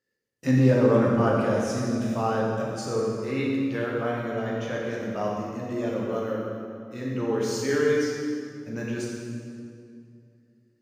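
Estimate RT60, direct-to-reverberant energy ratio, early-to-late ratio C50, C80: 2.4 s, -4.0 dB, -1.0 dB, 1.0 dB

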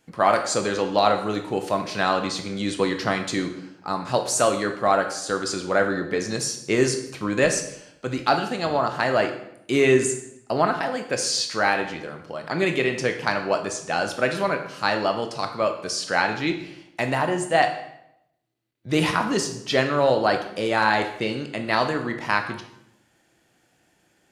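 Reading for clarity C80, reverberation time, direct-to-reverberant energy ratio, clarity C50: 11.0 dB, 0.80 s, 5.5 dB, 8.5 dB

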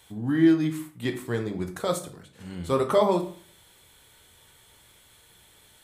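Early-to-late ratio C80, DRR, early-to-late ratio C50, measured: 15.5 dB, 5.5 dB, 11.5 dB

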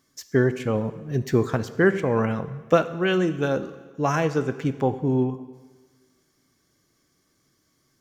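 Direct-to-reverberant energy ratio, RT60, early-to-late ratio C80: 12.0 dB, 1.4 s, 15.5 dB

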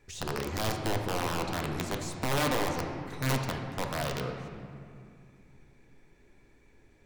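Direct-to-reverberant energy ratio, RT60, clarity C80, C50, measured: 2.5 dB, 2.4 s, 5.5 dB, 4.0 dB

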